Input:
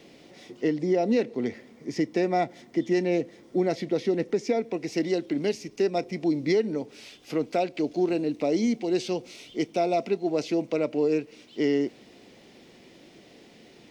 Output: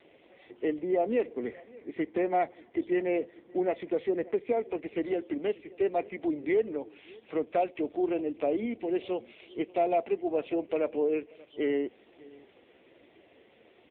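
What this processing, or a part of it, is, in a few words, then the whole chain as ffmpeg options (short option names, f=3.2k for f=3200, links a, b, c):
satellite phone: -af "highpass=380,lowpass=3.4k,aecho=1:1:584:0.0708" -ar 8000 -c:a libopencore_amrnb -b:a 5900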